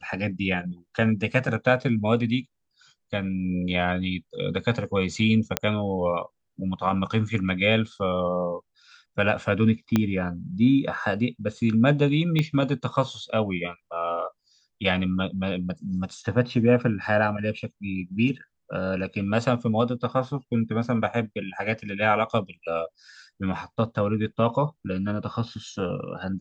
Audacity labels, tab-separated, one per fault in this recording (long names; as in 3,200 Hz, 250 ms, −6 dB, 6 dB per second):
5.570000	5.570000	click −4 dBFS
9.960000	9.960000	click −8 dBFS
12.390000	12.390000	click −13 dBFS